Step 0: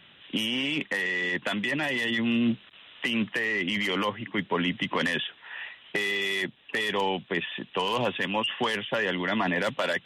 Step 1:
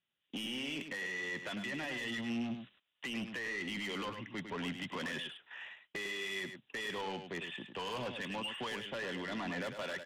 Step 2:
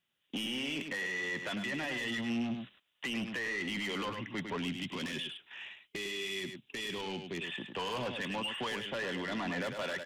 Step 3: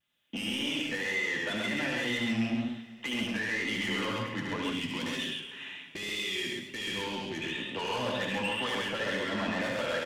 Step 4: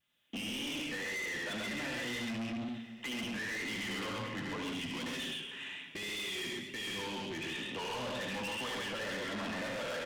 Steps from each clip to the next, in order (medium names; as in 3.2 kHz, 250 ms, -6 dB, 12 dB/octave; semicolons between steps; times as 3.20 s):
gate -43 dBFS, range -26 dB; saturation -26 dBFS, distortion -12 dB; delay 103 ms -8 dB; trim -9 dB
time-frequency box 4.58–7.44 s, 410–2100 Hz -7 dB; in parallel at -1.5 dB: peak limiter -39 dBFS, peak gain reduction 7 dB
vibrato 2 Hz 87 cents; on a send: loudspeakers at several distances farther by 25 m -4 dB, 46 m -2 dB; on the sum: two-slope reverb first 0.22 s, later 3 s, from -20 dB, DRR 3.5 dB
saturation -35.5 dBFS, distortion -9 dB